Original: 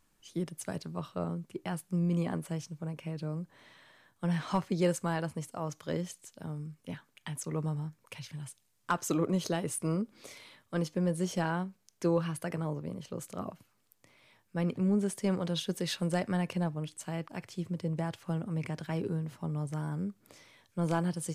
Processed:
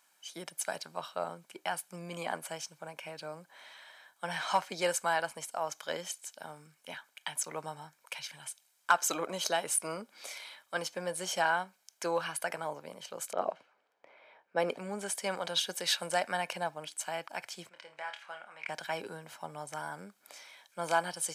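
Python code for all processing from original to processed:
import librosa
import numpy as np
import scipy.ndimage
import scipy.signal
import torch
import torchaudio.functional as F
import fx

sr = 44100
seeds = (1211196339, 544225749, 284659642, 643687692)

y = fx.chain(x, sr, fx.env_lowpass(base_hz=1900.0, full_db=-28.0),
    fx.peak_eq(hz=440.0, db=11.0, octaves=1.3), at=(13.33, 14.78))
y = fx.chain(y, sr, fx.bandpass_q(hz=1900.0, q=1.2),
    fx.room_flutter(wall_m=4.5, rt60_s=0.23), at=(17.69, 18.69))
y = scipy.signal.sosfilt(scipy.signal.butter(2, 690.0, 'highpass', fs=sr, output='sos'), y)
y = y + 0.4 * np.pad(y, (int(1.3 * sr / 1000.0), 0))[:len(y)]
y = F.gain(torch.from_numpy(y), 6.0).numpy()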